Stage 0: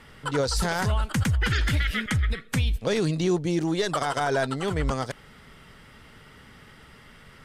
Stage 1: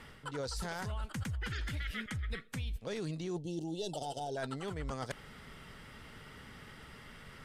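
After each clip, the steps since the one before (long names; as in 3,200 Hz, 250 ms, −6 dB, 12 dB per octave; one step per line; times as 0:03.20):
gain on a spectral selection 0:03.36–0:04.37, 940–2,600 Hz −26 dB
reversed playback
downward compressor 4 to 1, threshold −36 dBFS, peak gain reduction 13.5 dB
reversed playback
level −2 dB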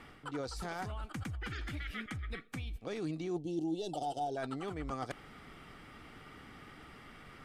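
bass and treble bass −1 dB, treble −3 dB
hollow resonant body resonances 310/740/1,200/2,300 Hz, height 9 dB, ringing for 35 ms
level −2.5 dB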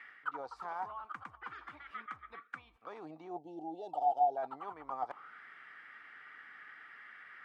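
envelope filter 770–2,000 Hz, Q 5.7, down, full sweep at −33.5 dBFS
level +10.5 dB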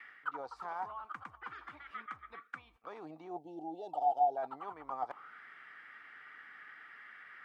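noise gate with hold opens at −53 dBFS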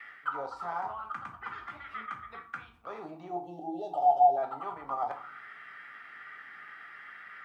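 convolution reverb RT60 0.40 s, pre-delay 4 ms, DRR 3.5 dB
level +3.5 dB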